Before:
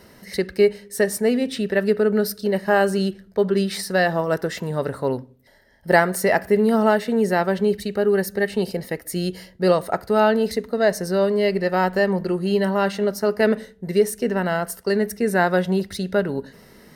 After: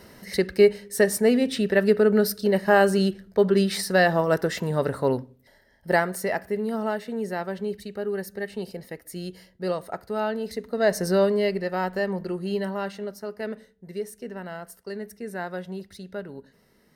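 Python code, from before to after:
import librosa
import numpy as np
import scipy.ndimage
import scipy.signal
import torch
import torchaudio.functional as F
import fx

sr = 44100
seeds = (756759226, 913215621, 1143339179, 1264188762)

y = fx.gain(x, sr, db=fx.line((5.18, 0.0), (6.57, -10.0), (10.44, -10.0), (11.08, 1.0), (11.68, -7.0), (12.54, -7.0), (13.3, -14.0)))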